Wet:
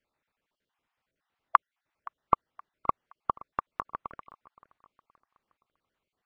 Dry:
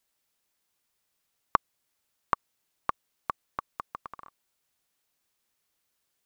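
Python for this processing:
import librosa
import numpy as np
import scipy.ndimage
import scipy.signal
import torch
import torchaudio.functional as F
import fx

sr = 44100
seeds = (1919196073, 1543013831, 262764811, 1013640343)

p1 = fx.spec_dropout(x, sr, seeds[0], share_pct=34)
p2 = scipy.signal.sosfilt(scipy.signal.butter(2, 2100.0, 'lowpass', fs=sr, output='sos'), p1)
p3 = p2 + fx.echo_feedback(p2, sr, ms=521, feedback_pct=42, wet_db=-21, dry=0)
y = p3 * 10.0 ** (4.5 / 20.0)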